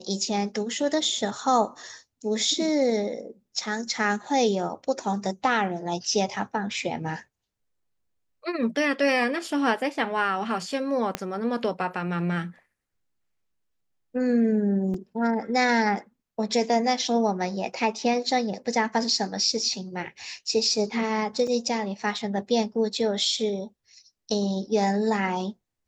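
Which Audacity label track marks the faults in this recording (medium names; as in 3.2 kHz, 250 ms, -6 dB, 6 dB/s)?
11.150000	11.150000	pop -11 dBFS
14.940000	14.940000	dropout 3.5 ms
21.470000	21.470000	dropout 4.1 ms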